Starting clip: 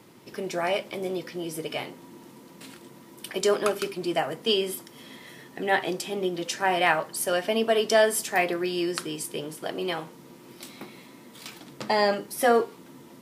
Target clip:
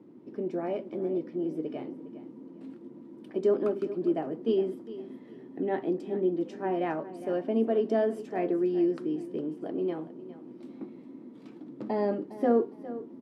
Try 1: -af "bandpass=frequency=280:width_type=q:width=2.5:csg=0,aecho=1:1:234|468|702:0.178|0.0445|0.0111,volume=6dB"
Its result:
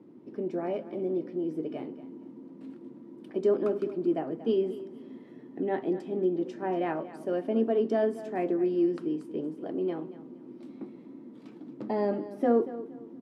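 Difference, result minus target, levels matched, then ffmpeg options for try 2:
echo 174 ms early
-af "bandpass=frequency=280:width_type=q:width=2.5:csg=0,aecho=1:1:408|816|1224:0.178|0.0445|0.0111,volume=6dB"

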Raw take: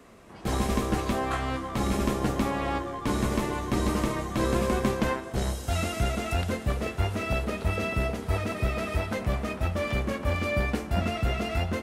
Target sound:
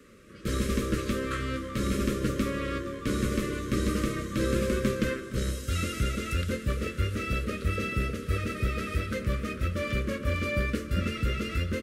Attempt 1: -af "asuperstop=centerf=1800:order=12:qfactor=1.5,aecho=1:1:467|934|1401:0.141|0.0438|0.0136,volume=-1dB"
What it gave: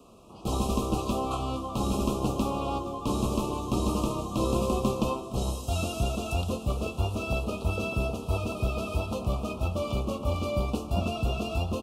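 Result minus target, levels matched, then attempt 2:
2,000 Hz band −6.5 dB
-af "asuperstop=centerf=820:order=12:qfactor=1.5,aecho=1:1:467|934|1401:0.141|0.0438|0.0136,volume=-1dB"

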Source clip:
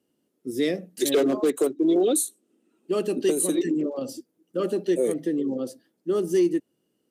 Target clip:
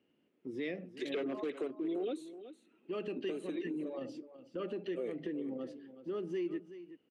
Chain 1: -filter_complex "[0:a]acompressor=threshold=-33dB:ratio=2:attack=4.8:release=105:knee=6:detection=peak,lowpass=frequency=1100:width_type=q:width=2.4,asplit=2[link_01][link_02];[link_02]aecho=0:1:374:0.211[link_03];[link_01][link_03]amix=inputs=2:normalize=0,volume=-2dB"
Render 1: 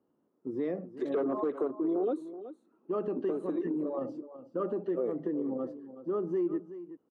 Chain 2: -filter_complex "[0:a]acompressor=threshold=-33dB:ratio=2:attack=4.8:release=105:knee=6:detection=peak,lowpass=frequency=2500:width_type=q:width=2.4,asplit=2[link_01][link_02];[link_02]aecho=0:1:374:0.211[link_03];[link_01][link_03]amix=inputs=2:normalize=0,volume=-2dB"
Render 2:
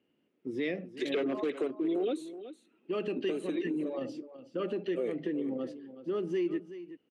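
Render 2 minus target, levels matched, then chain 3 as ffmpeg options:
downward compressor: peak gain reduction −5.5 dB
-filter_complex "[0:a]acompressor=threshold=-44dB:ratio=2:attack=4.8:release=105:knee=6:detection=peak,lowpass=frequency=2500:width_type=q:width=2.4,asplit=2[link_01][link_02];[link_02]aecho=0:1:374:0.211[link_03];[link_01][link_03]amix=inputs=2:normalize=0,volume=-2dB"

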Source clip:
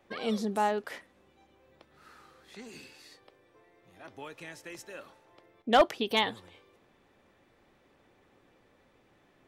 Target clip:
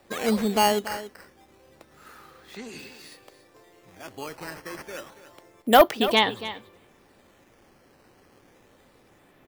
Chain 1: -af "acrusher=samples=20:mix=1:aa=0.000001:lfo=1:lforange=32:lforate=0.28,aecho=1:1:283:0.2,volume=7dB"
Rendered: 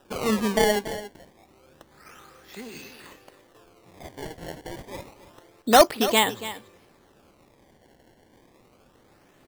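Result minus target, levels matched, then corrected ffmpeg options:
sample-and-hold swept by an LFO: distortion +9 dB
-af "acrusher=samples=7:mix=1:aa=0.000001:lfo=1:lforange=11.2:lforate=0.28,aecho=1:1:283:0.2,volume=7dB"

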